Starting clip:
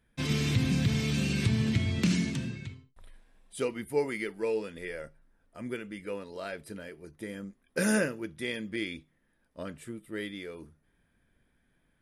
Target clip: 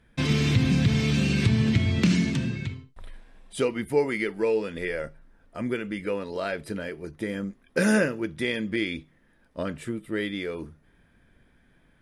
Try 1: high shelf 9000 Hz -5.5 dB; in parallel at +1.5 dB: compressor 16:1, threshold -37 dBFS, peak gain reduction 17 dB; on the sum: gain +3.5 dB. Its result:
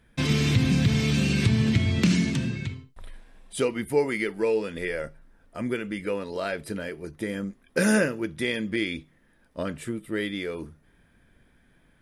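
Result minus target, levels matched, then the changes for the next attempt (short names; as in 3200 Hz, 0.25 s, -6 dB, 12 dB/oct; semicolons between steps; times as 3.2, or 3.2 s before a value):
8000 Hz band +3.0 dB
change: high shelf 9000 Hz -13.5 dB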